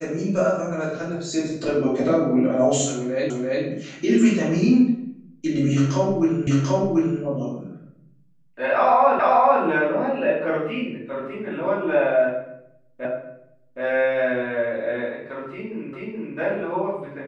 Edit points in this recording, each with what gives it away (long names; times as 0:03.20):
0:03.30: the same again, the last 0.34 s
0:06.47: the same again, the last 0.74 s
0:09.19: the same again, the last 0.44 s
0:13.05: the same again, the last 0.77 s
0:15.93: the same again, the last 0.43 s